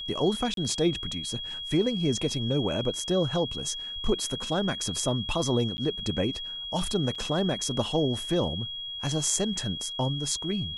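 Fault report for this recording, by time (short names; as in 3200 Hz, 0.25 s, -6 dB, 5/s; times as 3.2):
tone 3300 Hz -34 dBFS
0.54–0.57 gap 32 ms
5.77–5.78 gap 10 ms
7.15 gap 4.7 ms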